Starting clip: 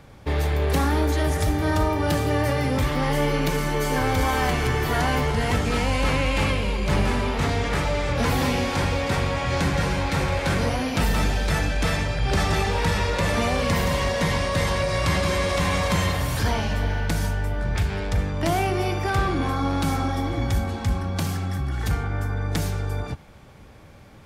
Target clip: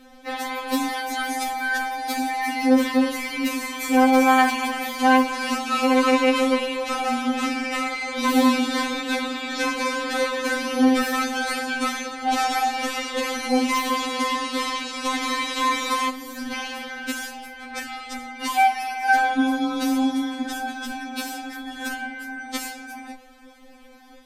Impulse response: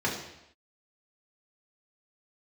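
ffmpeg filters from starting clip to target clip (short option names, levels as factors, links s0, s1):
-filter_complex "[0:a]asettb=1/sr,asplit=3[s0][s1][s2];[s0]atrim=end=16.094[s3];[s1]atrim=start=16.09:end=16.52,asetpts=PTS-STARTPTS,afade=t=in:d=0.004:c=qsin,afade=t=out:st=0.426:d=0.004:c=qsin,acrossover=split=350[s4][s5];[s5]acompressor=threshold=0.00891:ratio=3[s6];[s4][s6]amix=inputs=2:normalize=0[s7];[s2]atrim=start=16.516[s8];[s3][s7]acrossfade=d=0.004:c1=hsin:c2=qsin[s9];[s9][s8]acrossfade=d=0.004:c1=qsin:c2=hsin,afftfilt=real='re*3.46*eq(mod(b,12),0)':imag='im*3.46*eq(mod(b,12),0)':win_size=2048:overlap=0.75,volume=1.58"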